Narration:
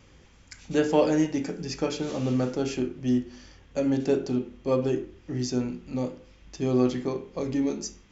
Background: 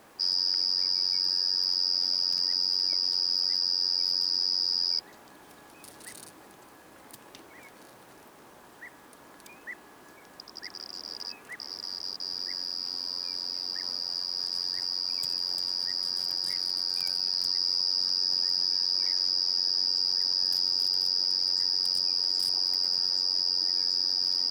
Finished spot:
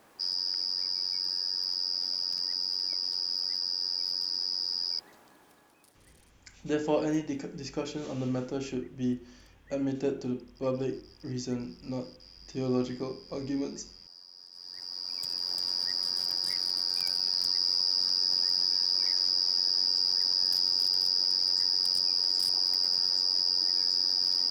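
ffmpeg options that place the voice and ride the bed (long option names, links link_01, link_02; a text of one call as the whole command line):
ffmpeg -i stem1.wav -i stem2.wav -filter_complex "[0:a]adelay=5950,volume=-6dB[link_01];[1:a]volume=14.5dB,afade=type=out:start_time=5.08:duration=0.98:silence=0.188365,afade=type=in:start_time=14.53:duration=1.19:silence=0.112202[link_02];[link_01][link_02]amix=inputs=2:normalize=0" out.wav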